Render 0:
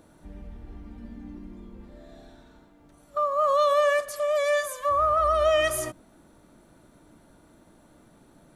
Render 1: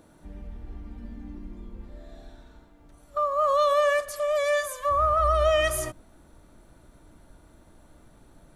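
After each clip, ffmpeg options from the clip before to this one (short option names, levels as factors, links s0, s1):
-af "asubboost=boost=3.5:cutoff=95"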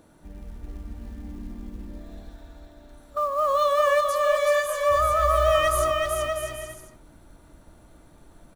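-af "acrusher=bits=7:mode=log:mix=0:aa=0.000001,aecho=1:1:380|646|832.2|962.5|1054:0.631|0.398|0.251|0.158|0.1"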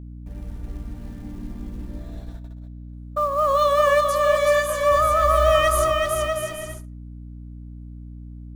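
-af "agate=range=0.0501:threshold=0.00891:ratio=16:detection=peak,aeval=exprs='val(0)+0.0112*(sin(2*PI*60*n/s)+sin(2*PI*2*60*n/s)/2+sin(2*PI*3*60*n/s)/3+sin(2*PI*4*60*n/s)/4+sin(2*PI*5*60*n/s)/5)':c=same,volume=1.41"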